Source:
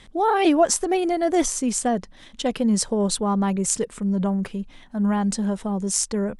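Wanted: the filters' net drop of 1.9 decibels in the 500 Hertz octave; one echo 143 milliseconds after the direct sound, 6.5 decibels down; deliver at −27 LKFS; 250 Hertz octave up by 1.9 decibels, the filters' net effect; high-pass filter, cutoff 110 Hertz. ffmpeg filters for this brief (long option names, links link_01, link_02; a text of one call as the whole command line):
ffmpeg -i in.wav -af "highpass=110,equalizer=frequency=250:width_type=o:gain=4,equalizer=frequency=500:width_type=o:gain=-4.5,aecho=1:1:143:0.473,volume=-5.5dB" out.wav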